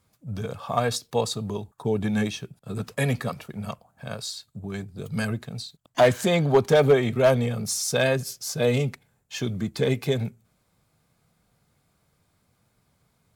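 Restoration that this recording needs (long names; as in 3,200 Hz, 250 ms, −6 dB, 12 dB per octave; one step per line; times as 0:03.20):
clipped peaks rebuilt −10.5 dBFS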